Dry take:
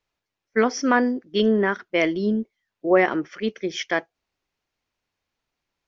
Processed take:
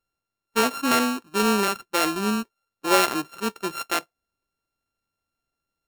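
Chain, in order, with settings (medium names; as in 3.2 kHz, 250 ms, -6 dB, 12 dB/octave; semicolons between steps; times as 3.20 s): sorted samples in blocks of 32 samples; trim -2 dB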